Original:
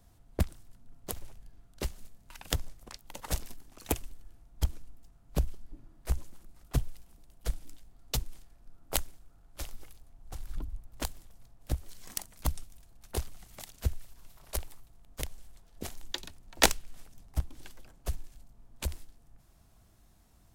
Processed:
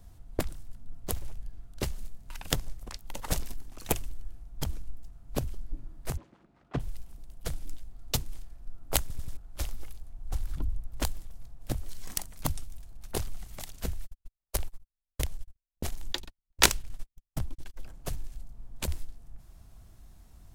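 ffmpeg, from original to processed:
ffmpeg -i in.wav -filter_complex "[0:a]asplit=3[link_01][link_02][link_03];[link_01]afade=type=out:start_time=6.16:duration=0.02[link_04];[link_02]highpass=200,lowpass=2300,afade=type=in:start_time=6.16:duration=0.02,afade=type=out:start_time=6.79:duration=0.02[link_05];[link_03]afade=type=in:start_time=6.79:duration=0.02[link_06];[link_04][link_05][link_06]amix=inputs=3:normalize=0,asplit=3[link_07][link_08][link_09];[link_07]afade=type=out:start_time=13.98:duration=0.02[link_10];[link_08]agate=range=-49dB:threshold=-43dB:ratio=16:release=100:detection=peak,afade=type=in:start_time=13.98:duration=0.02,afade=type=out:start_time=17.76:duration=0.02[link_11];[link_09]afade=type=in:start_time=17.76:duration=0.02[link_12];[link_10][link_11][link_12]amix=inputs=3:normalize=0,asplit=5[link_13][link_14][link_15][link_16][link_17];[link_13]atrim=end=9.102[link_18];[link_14]atrim=start=9.008:end=9.102[link_19];[link_15]atrim=start=9.008:end=9.102[link_20];[link_16]atrim=start=9.008:end=9.102[link_21];[link_17]atrim=start=9.368[link_22];[link_18][link_19]acrossfade=duration=0.004:curve1=hsin:curve2=hsin[link_23];[link_23][link_20]acrossfade=duration=0.004:curve1=hsin:curve2=hsin[link_24];[link_24][link_21]acrossfade=duration=0.004:curve1=hsin:curve2=hsin[link_25];[link_25][link_22]acrossfade=duration=0.004:curve1=hsin:curve2=hsin,afftfilt=real='re*lt(hypot(re,im),0.282)':imag='im*lt(hypot(re,im),0.282)':win_size=1024:overlap=0.75,lowshelf=frequency=100:gain=10,volume=3dB" out.wav

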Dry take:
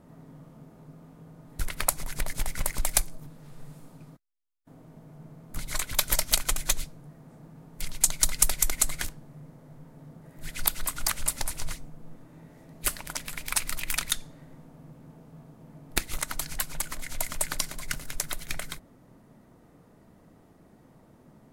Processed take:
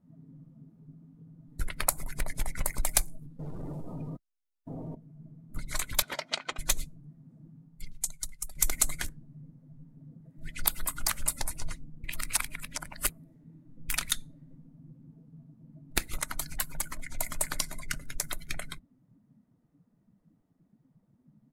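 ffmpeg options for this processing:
ffmpeg -i in.wav -filter_complex "[0:a]asettb=1/sr,asplit=3[link_01][link_02][link_03];[link_01]atrim=end=3.394[link_04];[link_02]atrim=start=3.39:end=4.95,asetpts=PTS-STARTPTS,afade=type=in:duration=0.004:curve=qsin,afade=type=out:start_time=1.556:duration=0.004:curve=qsin,aeval=exprs='0.0251*sin(PI/2*3.55*val(0)/0.0251)':channel_layout=same[link_05];[link_03]atrim=start=4.946[link_06];[link_04][link_05]acrossfade=duration=0.004:curve1=hsin:curve2=qsin[link_07];[link_07][link_06]acrossfade=duration=0.004:curve1=qsin:curve2=hsin,asettb=1/sr,asplit=3[link_08][link_09][link_10];[link_08]atrim=end=6.024[link_11];[link_09]atrim=start=6.02:end=6.59,asetpts=PTS-STARTPTS,afade=type=in:duration=0.004:curve=qsin,afade=type=out:start_time=0.566:duration=0.004:curve=qsin,highpass=220,lowpass=3600[link_12];[link_10]atrim=start=6.586[link_13];[link_11][link_12]acrossfade=duration=0.004:curve1=hsin:curve2=qsin[link_14];[link_14][link_13]acrossfade=duration=0.004:curve1=qsin:curve2=hsin,asplit=2[link_15][link_16];[link_16]afade=type=in:start_time=16.62:duration=0.01,afade=type=out:start_time=17.28:duration=0.01,aecho=0:1:520|1040:0.237137|0.0355706[link_17];[link_15][link_17]amix=inputs=2:normalize=0,asplit=4[link_18][link_19][link_20][link_21];[link_18]atrim=end=8.55,asetpts=PTS-STARTPTS,afade=type=out:start_time=7.5:duration=1.05:curve=qua:silence=0.199526[link_22];[link_19]atrim=start=8.55:end=12.042,asetpts=PTS-STARTPTS,afade=type=in:duration=0.004:curve=hsin:silence=0.199526[link_23];[link_20]atrim=start=12.038:end=13.892,asetpts=PTS-STARTPTS,areverse[link_24];[link_21]atrim=start=13.888[link_25];[link_22][link_23]concat=n=2:v=0:a=1[link_26];[link_26][link_24]acrossfade=duration=0.004:curve1=hsin:curve2=hsin[link_27];[link_27][link_25]acrossfade=duration=0.004:curve1=hsin:curve2=hsin,afftdn=noise_reduction=20:noise_floor=-42,volume=-1.5dB" out.wav

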